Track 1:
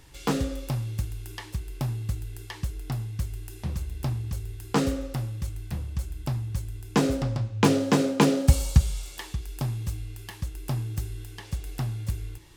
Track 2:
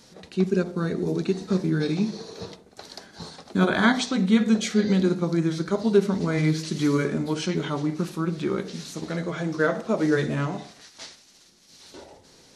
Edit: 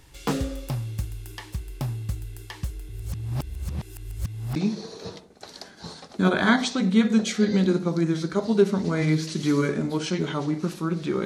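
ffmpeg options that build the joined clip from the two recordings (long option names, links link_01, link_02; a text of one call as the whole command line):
ffmpeg -i cue0.wav -i cue1.wav -filter_complex "[0:a]apad=whole_dur=11.25,atrim=end=11.25,asplit=2[link_01][link_02];[link_01]atrim=end=2.892[link_03];[link_02]atrim=start=2.888:end=4.562,asetpts=PTS-STARTPTS,areverse[link_04];[1:a]atrim=start=1.918:end=8.61[link_05];[link_03][link_04]acrossfade=duration=0.004:curve1=hsin:curve2=hsin[link_06];[link_06][link_05]acrossfade=duration=0.004:curve1=hsin:curve2=hsin" out.wav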